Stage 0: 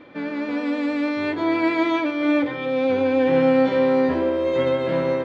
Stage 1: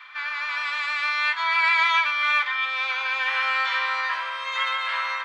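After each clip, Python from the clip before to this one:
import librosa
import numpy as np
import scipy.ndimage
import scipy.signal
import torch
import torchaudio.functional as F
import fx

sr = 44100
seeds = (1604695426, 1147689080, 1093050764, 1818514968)

y = scipy.signal.sosfilt(scipy.signal.cheby1(4, 1.0, 1100.0, 'highpass', fs=sr, output='sos'), x)
y = y * librosa.db_to_amplitude(9.0)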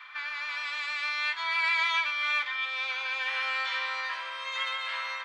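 y = fx.dynamic_eq(x, sr, hz=1200.0, q=0.74, threshold_db=-35.0, ratio=4.0, max_db=-7)
y = y * librosa.db_to_amplitude(-2.5)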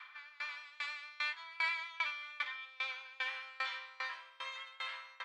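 y = fx.tremolo_decay(x, sr, direction='decaying', hz=2.5, depth_db=24)
y = y * librosa.db_to_amplitude(-3.5)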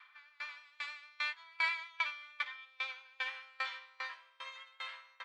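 y = fx.upward_expand(x, sr, threshold_db=-51.0, expansion=1.5)
y = y * librosa.db_to_amplitude(2.5)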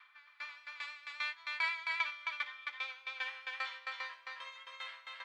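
y = x + 10.0 ** (-3.0 / 20.0) * np.pad(x, (int(266 * sr / 1000.0), 0))[:len(x)]
y = y * librosa.db_to_amplitude(-1.5)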